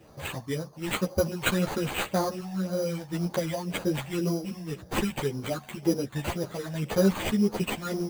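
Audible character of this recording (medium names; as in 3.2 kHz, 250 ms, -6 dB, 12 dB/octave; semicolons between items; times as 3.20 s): phasing stages 12, 1.9 Hz, lowest notch 390–3100 Hz; aliases and images of a low sample rate 5.4 kHz, jitter 0%; a shimmering, thickened sound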